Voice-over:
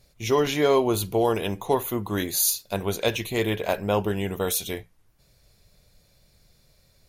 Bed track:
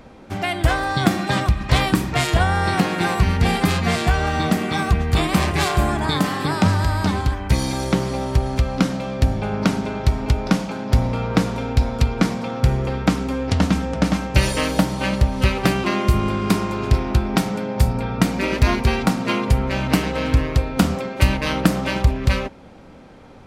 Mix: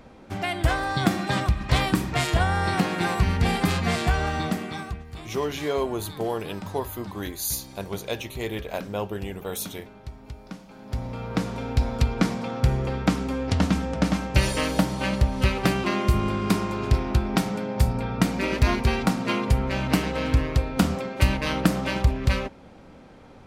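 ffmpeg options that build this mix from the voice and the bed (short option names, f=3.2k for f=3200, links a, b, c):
-filter_complex "[0:a]adelay=5050,volume=-6dB[a];[1:a]volume=12.5dB,afade=t=out:st=4.21:d=0.84:silence=0.149624,afade=t=in:st=10.66:d=1.27:silence=0.141254[b];[a][b]amix=inputs=2:normalize=0"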